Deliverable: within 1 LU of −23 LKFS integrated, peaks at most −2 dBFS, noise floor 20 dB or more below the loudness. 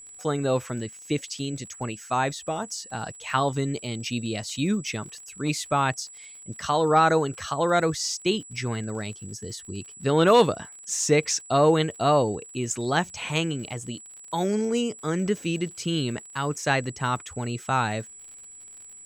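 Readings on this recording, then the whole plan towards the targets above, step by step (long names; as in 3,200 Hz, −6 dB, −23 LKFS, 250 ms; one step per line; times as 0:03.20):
crackle rate 46 per second; interfering tone 7,800 Hz; level of the tone −43 dBFS; integrated loudness −26.0 LKFS; sample peak −7.5 dBFS; target loudness −23.0 LKFS
→ click removal
notch filter 7,800 Hz, Q 30
level +3 dB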